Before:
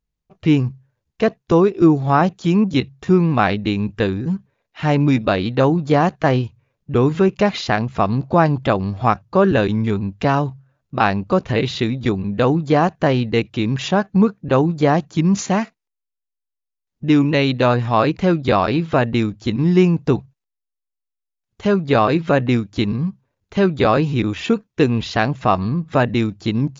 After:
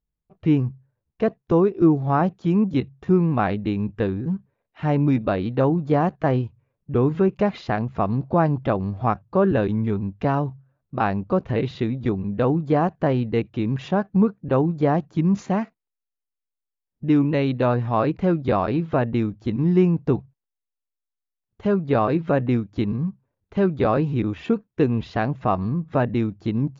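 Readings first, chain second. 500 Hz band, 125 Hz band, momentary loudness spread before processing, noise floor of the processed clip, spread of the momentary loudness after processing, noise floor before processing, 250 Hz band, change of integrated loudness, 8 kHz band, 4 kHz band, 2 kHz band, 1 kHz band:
-4.5 dB, -3.5 dB, 6 LU, -85 dBFS, 6 LU, -82 dBFS, -3.5 dB, -4.5 dB, n/a, -14.0 dB, -9.0 dB, -5.5 dB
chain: LPF 1100 Hz 6 dB/oct; gain -3.5 dB

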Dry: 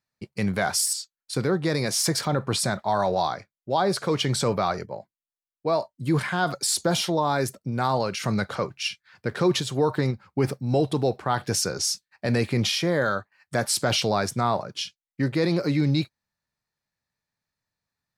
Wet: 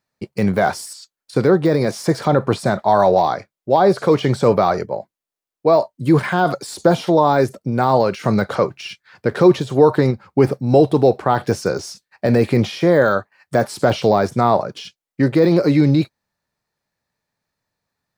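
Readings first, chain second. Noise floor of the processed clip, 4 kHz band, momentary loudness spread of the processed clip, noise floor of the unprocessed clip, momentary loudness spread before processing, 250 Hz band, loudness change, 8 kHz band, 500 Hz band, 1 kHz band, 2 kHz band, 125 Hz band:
under -85 dBFS, -3.5 dB, 10 LU, under -85 dBFS, 8 LU, +9.0 dB, +8.0 dB, -8.0 dB, +11.0 dB, +8.5 dB, +4.5 dB, +6.5 dB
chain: de-esser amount 100%; bell 490 Hz +6.5 dB 2.4 oct; gain +5 dB

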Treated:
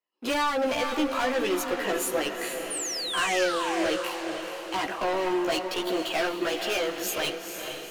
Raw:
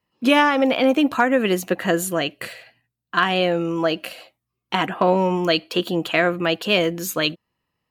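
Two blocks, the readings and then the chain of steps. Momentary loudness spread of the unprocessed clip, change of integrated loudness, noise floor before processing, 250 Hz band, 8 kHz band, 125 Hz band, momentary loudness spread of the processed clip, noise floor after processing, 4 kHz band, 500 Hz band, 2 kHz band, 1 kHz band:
7 LU, -7.5 dB, -82 dBFS, -9.5 dB, +1.5 dB, -19.0 dB, 7 LU, -39 dBFS, -5.5 dB, -6.5 dB, -7.0 dB, -6.0 dB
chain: HPF 290 Hz 24 dB/oct; sample leveller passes 2; soft clip -15.5 dBFS, distortion -10 dB; chorus voices 4, 0.4 Hz, delay 15 ms, depth 1.5 ms; painted sound fall, 2.7–3.91, 500–9800 Hz -27 dBFS; diffused feedback echo 0.466 s, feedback 52%, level -6.5 dB; gain -5.5 dB

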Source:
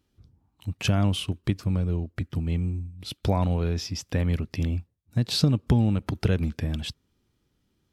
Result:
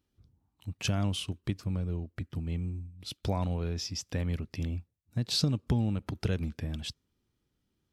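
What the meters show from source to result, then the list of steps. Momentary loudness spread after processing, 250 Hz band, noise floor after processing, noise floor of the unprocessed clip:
10 LU, -7.0 dB, -80 dBFS, -74 dBFS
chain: dynamic EQ 6100 Hz, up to +6 dB, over -46 dBFS, Q 0.82; gain -7 dB

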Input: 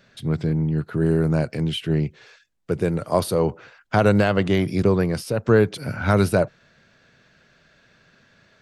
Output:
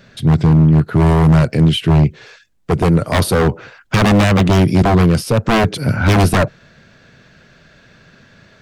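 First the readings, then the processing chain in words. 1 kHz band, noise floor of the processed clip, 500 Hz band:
+9.0 dB, -49 dBFS, +3.0 dB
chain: wavefolder -17.5 dBFS; low shelf 320 Hz +5.5 dB; gain +8.5 dB

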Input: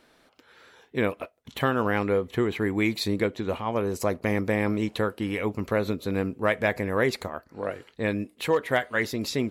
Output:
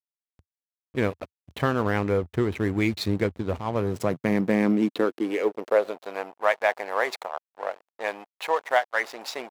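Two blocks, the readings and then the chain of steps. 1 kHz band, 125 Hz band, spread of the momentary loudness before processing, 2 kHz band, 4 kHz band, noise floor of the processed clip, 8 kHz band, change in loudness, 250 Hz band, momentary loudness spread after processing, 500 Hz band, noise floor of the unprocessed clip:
+3.0 dB, +0.5 dB, 8 LU, 0.0 dB, -2.0 dB, under -85 dBFS, -3.0 dB, +1.0 dB, +1.0 dB, 12 LU, +0.5 dB, -62 dBFS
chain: backlash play -30.5 dBFS; high-pass sweep 82 Hz -> 750 Hz, 3.57–6.13

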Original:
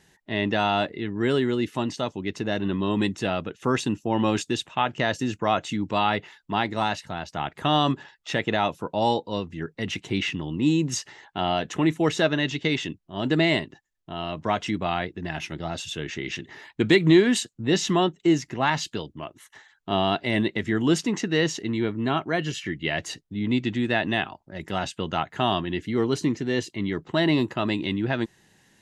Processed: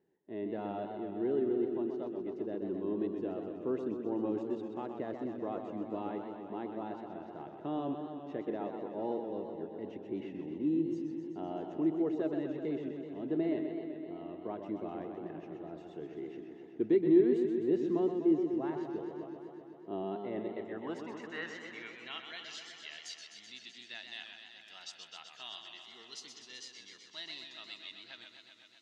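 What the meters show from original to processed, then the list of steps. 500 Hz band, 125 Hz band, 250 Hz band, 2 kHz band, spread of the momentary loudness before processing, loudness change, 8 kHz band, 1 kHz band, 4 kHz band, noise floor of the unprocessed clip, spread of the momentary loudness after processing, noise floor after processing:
-8.5 dB, -20.0 dB, -9.5 dB, -20.5 dB, 10 LU, -11.0 dB, under -20 dB, -18.0 dB, -18.0 dB, -66 dBFS, 16 LU, -56 dBFS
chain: band-pass sweep 370 Hz -> 5000 Hz, 20.16–22.66; warbling echo 0.127 s, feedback 78%, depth 106 cents, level -7 dB; gain -6.5 dB

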